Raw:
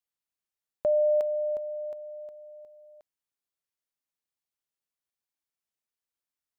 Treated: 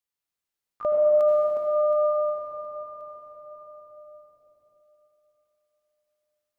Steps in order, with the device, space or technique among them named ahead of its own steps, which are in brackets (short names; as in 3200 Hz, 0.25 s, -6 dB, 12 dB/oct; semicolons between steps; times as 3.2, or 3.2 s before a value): shimmer-style reverb (harmoniser +12 st -11 dB; reverb RT60 5.2 s, pre-delay 70 ms, DRR -3.5 dB); 0.92–2.38 HPF 110 Hz 12 dB/oct